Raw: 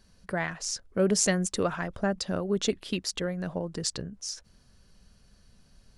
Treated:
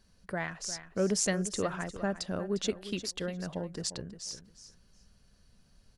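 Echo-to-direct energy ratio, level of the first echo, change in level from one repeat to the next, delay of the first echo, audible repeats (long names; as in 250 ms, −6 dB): −13.0 dB, −13.0 dB, −15.0 dB, 353 ms, 2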